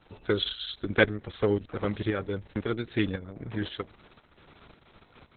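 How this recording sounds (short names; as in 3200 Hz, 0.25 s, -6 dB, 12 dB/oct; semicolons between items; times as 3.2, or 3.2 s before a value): tremolo saw up 1.9 Hz, depth 60%; Opus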